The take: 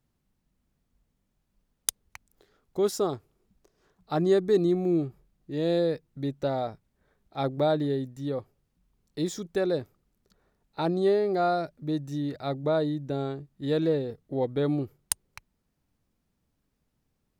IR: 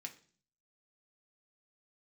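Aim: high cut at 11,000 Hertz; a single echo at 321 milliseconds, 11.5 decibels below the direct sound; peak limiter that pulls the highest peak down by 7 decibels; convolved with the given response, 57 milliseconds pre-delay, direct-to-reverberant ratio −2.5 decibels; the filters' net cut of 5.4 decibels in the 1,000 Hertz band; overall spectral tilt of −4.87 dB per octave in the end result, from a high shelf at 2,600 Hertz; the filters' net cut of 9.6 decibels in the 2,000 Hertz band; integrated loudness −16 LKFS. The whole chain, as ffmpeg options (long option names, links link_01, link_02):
-filter_complex "[0:a]lowpass=11000,equalizer=frequency=1000:width_type=o:gain=-6.5,equalizer=frequency=2000:width_type=o:gain=-6.5,highshelf=frequency=2600:gain=-9,alimiter=limit=-20.5dB:level=0:latency=1,aecho=1:1:321:0.266,asplit=2[link_01][link_02];[1:a]atrim=start_sample=2205,adelay=57[link_03];[link_02][link_03]afir=irnorm=-1:irlink=0,volume=6dB[link_04];[link_01][link_04]amix=inputs=2:normalize=0,volume=12dB"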